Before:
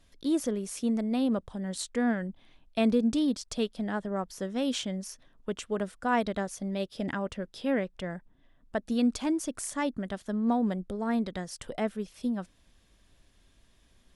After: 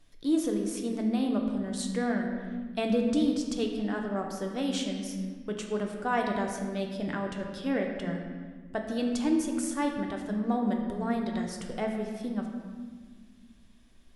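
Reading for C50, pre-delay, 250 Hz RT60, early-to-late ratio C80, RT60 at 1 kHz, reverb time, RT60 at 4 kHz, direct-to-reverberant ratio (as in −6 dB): 4.0 dB, 3 ms, 2.6 s, 5.5 dB, 1.5 s, 1.6 s, 1.1 s, 1.5 dB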